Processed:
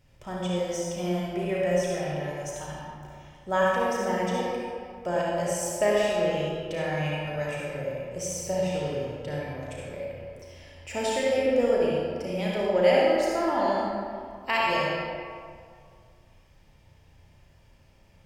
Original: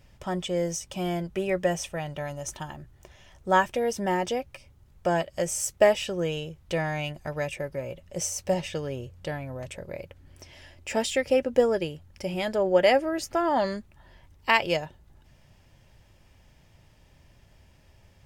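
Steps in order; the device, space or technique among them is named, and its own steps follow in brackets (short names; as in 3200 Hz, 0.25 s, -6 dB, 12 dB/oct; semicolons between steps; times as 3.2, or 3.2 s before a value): tunnel (flutter echo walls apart 5.8 m, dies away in 0.27 s; reverb RT60 2.2 s, pre-delay 52 ms, DRR -4.5 dB); gain -6.5 dB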